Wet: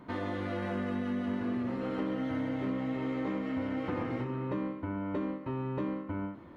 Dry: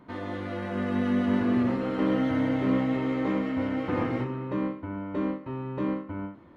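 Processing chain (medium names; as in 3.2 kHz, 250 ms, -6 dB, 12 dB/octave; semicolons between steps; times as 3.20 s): compression 6:1, threshold -33 dBFS, peak gain reduction 12.5 dB; trim +2 dB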